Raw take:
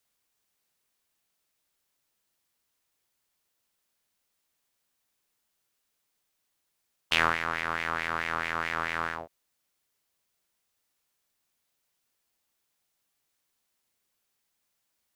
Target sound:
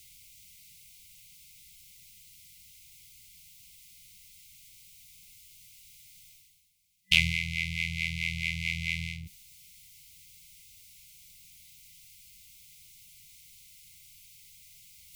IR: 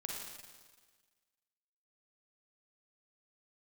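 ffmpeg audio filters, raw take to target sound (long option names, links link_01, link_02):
-af "afftfilt=real='re*(1-between(b*sr/4096,190,2000))':imag='im*(1-between(b*sr/4096,190,2000))':win_size=4096:overlap=0.75,acontrast=41,lowshelf=frequency=130:gain=8,areverse,acompressor=mode=upward:threshold=-38dB:ratio=2.5,areverse"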